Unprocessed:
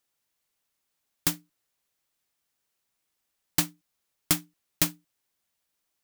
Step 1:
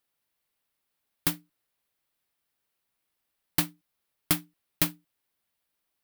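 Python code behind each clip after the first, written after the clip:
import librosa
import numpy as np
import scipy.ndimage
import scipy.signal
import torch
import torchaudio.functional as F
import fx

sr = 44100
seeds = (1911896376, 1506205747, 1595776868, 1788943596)

y = fx.peak_eq(x, sr, hz=6700.0, db=-8.0, octaves=0.74)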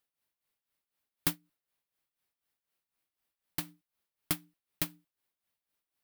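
y = x * (1.0 - 0.72 / 2.0 + 0.72 / 2.0 * np.cos(2.0 * np.pi * 4.0 * (np.arange(len(x)) / sr)))
y = F.gain(torch.from_numpy(y), -2.5).numpy()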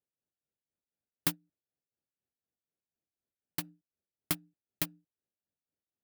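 y = fx.wiener(x, sr, points=41)
y = scipy.signal.sosfilt(scipy.signal.butter(2, 58.0, 'highpass', fs=sr, output='sos'), y)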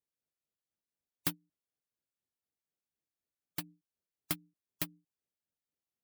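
y = fx.spec_gate(x, sr, threshold_db=-25, keep='strong')
y = F.gain(torch.from_numpy(y), -3.0).numpy()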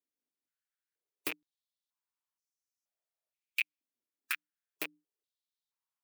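y = fx.rattle_buzz(x, sr, strikes_db=-50.0, level_db=-20.0)
y = fx.filter_held_highpass(y, sr, hz=2.1, low_hz=260.0, high_hz=5800.0)
y = F.gain(torch.from_numpy(y), -4.5).numpy()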